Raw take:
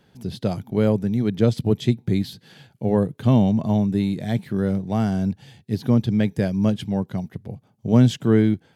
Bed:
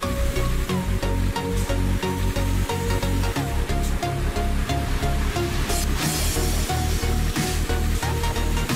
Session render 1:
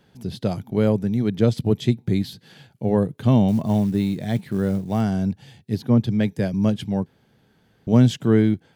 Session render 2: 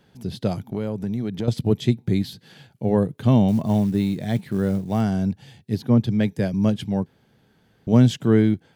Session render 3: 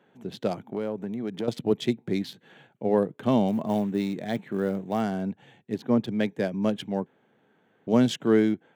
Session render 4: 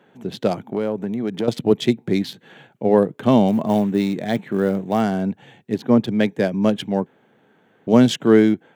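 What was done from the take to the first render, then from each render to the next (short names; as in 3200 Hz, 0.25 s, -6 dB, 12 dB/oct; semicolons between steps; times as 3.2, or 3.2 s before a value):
3.48–5.01 short-mantissa float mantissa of 4-bit; 5.82–6.54 three-band expander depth 70%; 7.06–7.87 room tone
0.61–1.48 compressor, threshold -22 dBFS
Wiener smoothing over 9 samples; HPF 280 Hz 12 dB/oct
gain +7.5 dB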